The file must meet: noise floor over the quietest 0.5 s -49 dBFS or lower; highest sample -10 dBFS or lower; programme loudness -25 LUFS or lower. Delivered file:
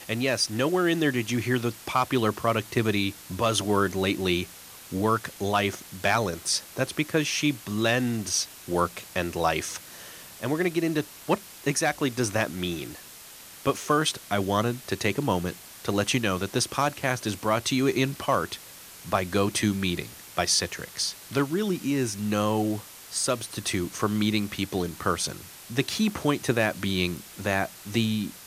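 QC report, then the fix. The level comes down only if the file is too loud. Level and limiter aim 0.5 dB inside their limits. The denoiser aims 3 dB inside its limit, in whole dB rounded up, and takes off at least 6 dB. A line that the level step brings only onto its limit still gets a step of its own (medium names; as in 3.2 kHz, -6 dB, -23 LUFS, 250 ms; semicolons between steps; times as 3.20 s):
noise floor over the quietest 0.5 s -46 dBFS: fail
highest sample -9.0 dBFS: fail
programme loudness -26.5 LUFS: pass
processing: noise reduction 6 dB, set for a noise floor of -46 dBFS; peak limiter -10.5 dBFS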